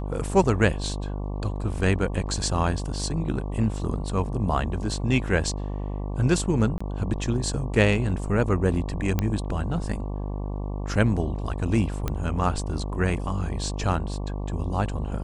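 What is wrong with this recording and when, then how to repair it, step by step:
buzz 50 Hz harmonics 23 -30 dBFS
6.78–6.80 s: dropout 25 ms
9.19 s: pop -10 dBFS
12.08 s: pop -13 dBFS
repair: de-click; de-hum 50 Hz, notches 23; interpolate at 6.78 s, 25 ms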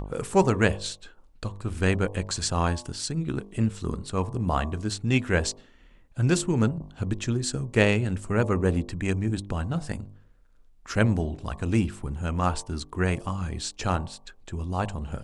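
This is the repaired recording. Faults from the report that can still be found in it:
nothing left

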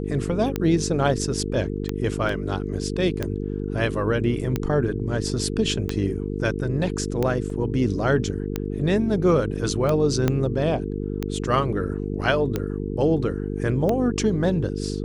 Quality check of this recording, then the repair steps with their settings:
buzz 50 Hz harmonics 9 -28 dBFS
tick 45 rpm -11 dBFS
2.29 s: dropout 3.2 ms
7.50 s: dropout 2.7 ms
10.28 s: pop -8 dBFS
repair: de-click; de-hum 50 Hz, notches 9; interpolate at 2.29 s, 3.2 ms; interpolate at 7.50 s, 2.7 ms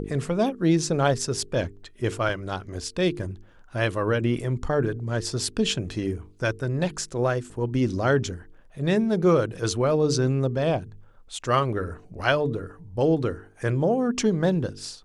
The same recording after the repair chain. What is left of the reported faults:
10.28 s: pop

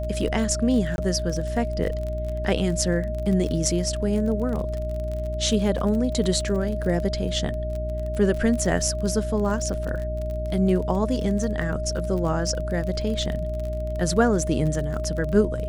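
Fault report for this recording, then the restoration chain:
crackle 33 per s -29 dBFS
hum 60 Hz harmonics 6 -29 dBFS
whine 620 Hz -30 dBFS
0.96–0.98 s: dropout 21 ms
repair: de-click; band-stop 620 Hz, Q 30; de-hum 60 Hz, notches 6; interpolate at 0.96 s, 21 ms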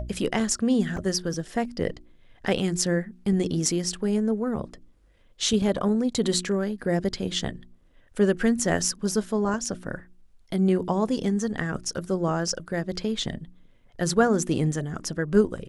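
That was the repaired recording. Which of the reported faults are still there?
nothing left

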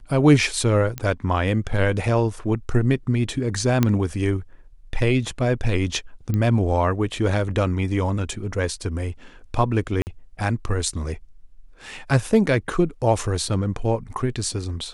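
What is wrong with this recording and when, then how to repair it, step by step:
0.98 s: pop -13 dBFS
3.83 s: pop -5 dBFS
6.34 s: pop -13 dBFS
10.02–10.07 s: dropout 49 ms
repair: de-click; interpolate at 10.02 s, 49 ms

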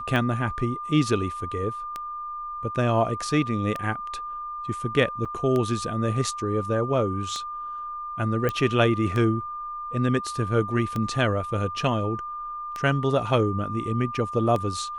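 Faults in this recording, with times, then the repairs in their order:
tick 33 1/3 rpm -16 dBFS
whine 1.2 kHz -31 dBFS
5.25–5.26 s: dropout 6.4 ms
8.49 s: pop -13 dBFS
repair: de-click; band-stop 1.2 kHz, Q 30; interpolate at 5.25 s, 6.4 ms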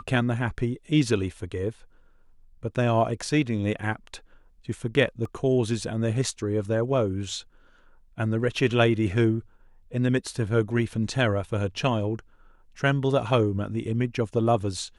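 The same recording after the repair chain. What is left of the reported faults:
nothing left

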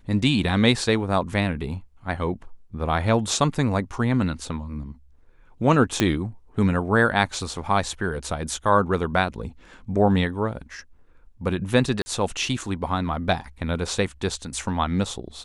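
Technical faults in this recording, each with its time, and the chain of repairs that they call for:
6.00 s: pop -5 dBFS
12.02–12.06 s: dropout 40 ms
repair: de-click; interpolate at 12.02 s, 40 ms

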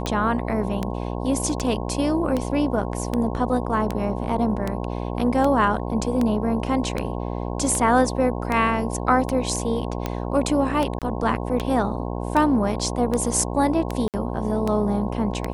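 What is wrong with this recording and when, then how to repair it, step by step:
buzz 60 Hz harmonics 18 -28 dBFS
tick 78 rpm -11 dBFS
10.99–11.02 s: dropout 27 ms
14.08–14.14 s: dropout 58 ms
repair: de-click; de-hum 60 Hz, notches 18; interpolate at 10.99 s, 27 ms; interpolate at 14.08 s, 58 ms

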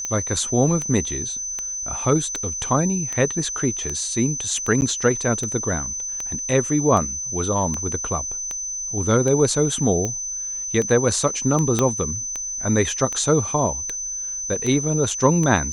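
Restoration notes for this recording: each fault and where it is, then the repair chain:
tick 78 rpm -13 dBFS
whine 6.1 kHz -26 dBFS
4.81–4.82 s: dropout 9.7 ms
11.79 s: pop -6 dBFS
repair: de-click; band-stop 6.1 kHz, Q 30; interpolate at 4.81 s, 9.7 ms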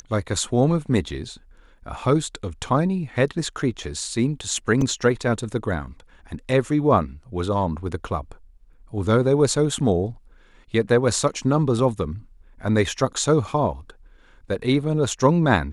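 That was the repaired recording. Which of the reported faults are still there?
11.79 s: pop

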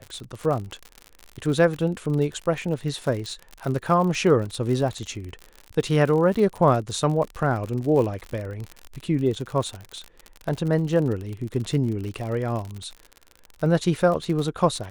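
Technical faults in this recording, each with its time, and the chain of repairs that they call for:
crackle 60 per s -29 dBFS
3.26 s: pop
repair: de-click

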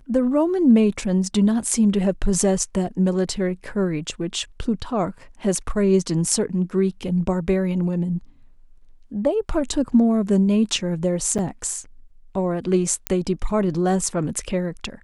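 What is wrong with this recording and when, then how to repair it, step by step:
11.38–11.39 s: dropout 7.7 ms
13.07 s: pop -5 dBFS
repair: de-click; interpolate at 11.38 s, 7.7 ms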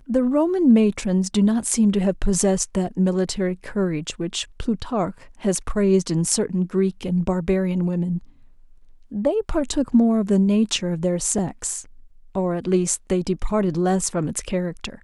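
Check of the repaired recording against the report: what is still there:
nothing left

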